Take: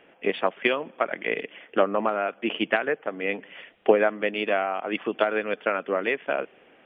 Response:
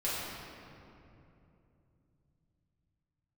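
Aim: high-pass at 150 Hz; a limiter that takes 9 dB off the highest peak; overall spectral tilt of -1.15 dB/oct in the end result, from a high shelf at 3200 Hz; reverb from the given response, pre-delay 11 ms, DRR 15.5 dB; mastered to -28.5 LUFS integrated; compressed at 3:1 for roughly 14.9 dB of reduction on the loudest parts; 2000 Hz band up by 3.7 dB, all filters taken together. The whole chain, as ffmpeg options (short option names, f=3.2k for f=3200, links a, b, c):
-filter_complex "[0:a]highpass=150,equalizer=f=2k:t=o:g=6,highshelf=f=3.2k:g=-4,acompressor=threshold=-35dB:ratio=3,alimiter=level_in=1dB:limit=-24dB:level=0:latency=1,volume=-1dB,asplit=2[a][b];[1:a]atrim=start_sample=2205,adelay=11[c];[b][c]afir=irnorm=-1:irlink=0,volume=-23dB[d];[a][d]amix=inputs=2:normalize=0,volume=10dB"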